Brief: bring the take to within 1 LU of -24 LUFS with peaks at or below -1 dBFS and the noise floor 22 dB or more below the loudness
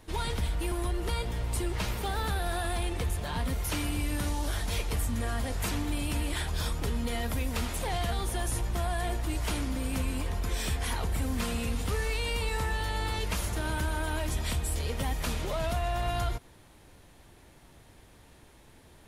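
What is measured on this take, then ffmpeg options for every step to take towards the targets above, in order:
loudness -32.0 LUFS; peak -19.5 dBFS; loudness target -24.0 LUFS
-> -af "volume=8dB"

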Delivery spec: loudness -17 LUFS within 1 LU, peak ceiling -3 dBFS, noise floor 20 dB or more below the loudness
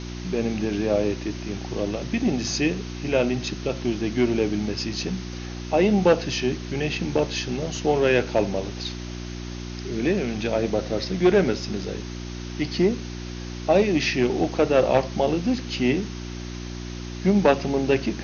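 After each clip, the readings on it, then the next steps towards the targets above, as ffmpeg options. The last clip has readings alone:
hum 60 Hz; harmonics up to 360 Hz; hum level -32 dBFS; noise floor -34 dBFS; noise floor target -44 dBFS; loudness -24.0 LUFS; peak -7.0 dBFS; loudness target -17.0 LUFS
-> -af "bandreject=f=60:t=h:w=4,bandreject=f=120:t=h:w=4,bandreject=f=180:t=h:w=4,bandreject=f=240:t=h:w=4,bandreject=f=300:t=h:w=4,bandreject=f=360:t=h:w=4"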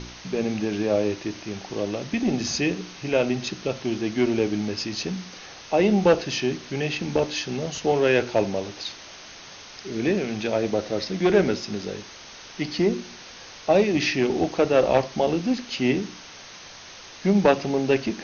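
hum none; noise floor -43 dBFS; noise floor target -45 dBFS
-> -af "afftdn=nr=6:nf=-43"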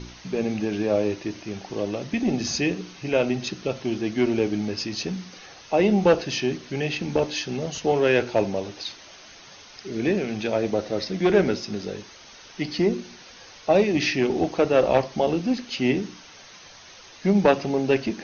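noise floor -47 dBFS; loudness -24.5 LUFS; peak -6.5 dBFS; loudness target -17.0 LUFS
-> -af "volume=7.5dB,alimiter=limit=-3dB:level=0:latency=1"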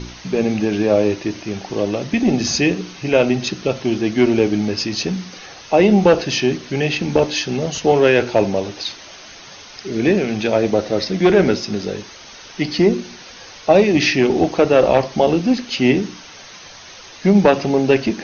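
loudness -17.5 LUFS; peak -3.0 dBFS; noise floor -39 dBFS

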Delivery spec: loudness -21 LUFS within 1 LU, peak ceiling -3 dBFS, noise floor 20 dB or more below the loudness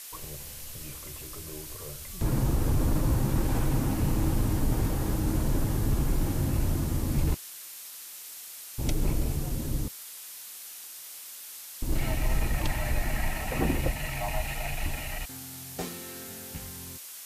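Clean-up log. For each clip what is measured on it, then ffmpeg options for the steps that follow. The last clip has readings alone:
noise floor -44 dBFS; noise floor target -52 dBFS; loudness -31.5 LUFS; peak -16.5 dBFS; loudness target -21.0 LUFS
-> -af "afftdn=nr=8:nf=-44"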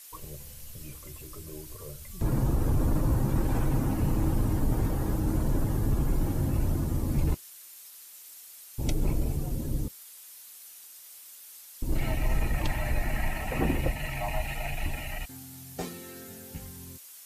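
noise floor -49 dBFS; noise floor target -51 dBFS
-> -af "afftdn=nr=6:nf=-49"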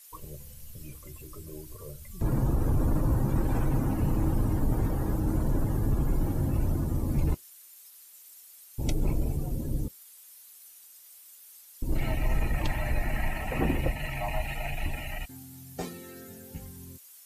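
noise floor -52 dBFS; loudness -30.5 LUFS; peak -17.0 dBFS; loudness target -21.0 LUFS
-> -af "volume=9.5dB"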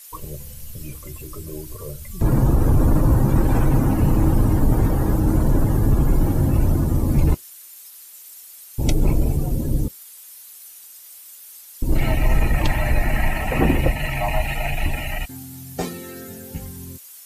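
loudness -21.0 LUFS; peak -7.5 dBFS; noise floor -43 dBFS

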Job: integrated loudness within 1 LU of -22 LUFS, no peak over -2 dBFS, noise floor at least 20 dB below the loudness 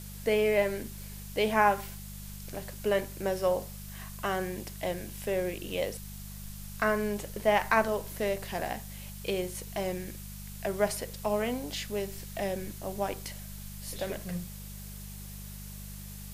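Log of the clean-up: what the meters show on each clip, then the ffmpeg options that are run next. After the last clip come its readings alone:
hum 50 Hz; harmonics up to 200 Hz; hum level -41 dBFS; noise floor -43 dBFS; noise floor target -52 dBFS; loudness -31.5 LUFS; peak -10.0 dBFS; loudness target -22.0 LUFS
-> -af "bandreject=f=50:t=h:w=4,bandreject=f=100:t=h:w=4,bandreject=f=150:t=h:w=4,bandreject=f=200:t=h:w=4"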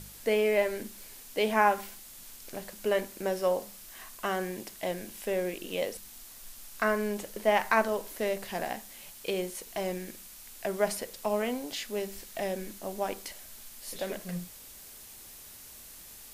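hum none; noise floor -49 dBFS; noise floor target -52 dBFS
-> -af "afftdn=nr=6:nf=-49"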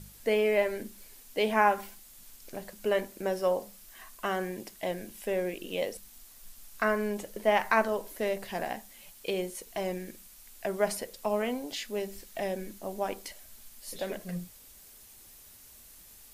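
noise floor -54 dBFS; loudness -31.5 LUFS; peak -10.0 dBFS; loudness target -22.0 LUFS
-> -af "volume=9.5dB,alimiter=limit=-2dB:level=0:latency=1"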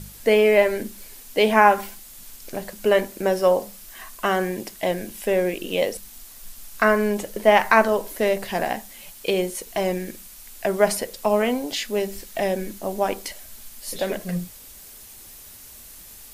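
loudness -22.5 LUFS; peak -2.0 dBFS; noise floor -44 dBFS

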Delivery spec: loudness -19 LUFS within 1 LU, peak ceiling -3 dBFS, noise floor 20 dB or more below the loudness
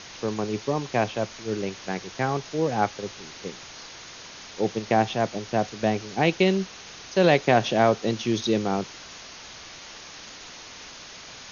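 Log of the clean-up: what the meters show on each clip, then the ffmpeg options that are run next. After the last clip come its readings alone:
noise floor -43 dBFS; noise floor target -45 dBFS; loudness -25.0 LUFS; peak -6.5 dBFS; loudness target -19.0 LUFS
-> -af "afftdn=nr=6:nf=-43"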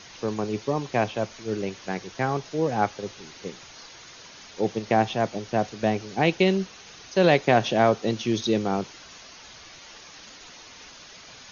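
noise floor -47 dBFS; loudness -25.0 LUFS; peak -6.5 dBFS; loudness target -19.0 LUFS
-> -af "volume=6dB,alimiter=limit=-3dB:level=0:latency=1"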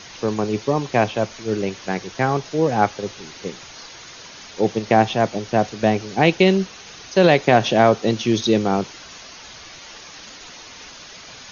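loudness -19.5 LUFS; peak -3.0 dBFS; noise floor -41 dBFS

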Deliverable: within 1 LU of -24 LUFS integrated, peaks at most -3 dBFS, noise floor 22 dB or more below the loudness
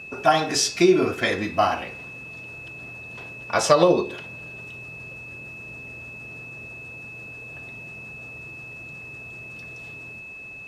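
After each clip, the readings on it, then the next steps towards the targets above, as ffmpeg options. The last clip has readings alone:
steady tone 2600 Hz; tone level -37 dBFS; loudness -21.0 LUFS; peak -1.0 dBFS; loudness target -24.0 LUFS
-> -af "bandreject=f=2.6k:w=30"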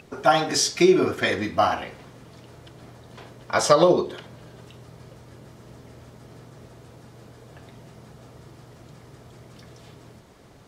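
steady tone none; loudness -21.0 LUFS; peak -1.0 dBFS; loudness target -24.0 LUFS
-> -af "volume=-3dB"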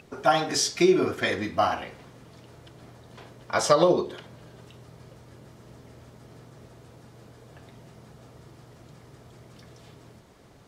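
loudness -24.0 LUFS; peak -4.0 dBFS; noise floor -53 dBFS

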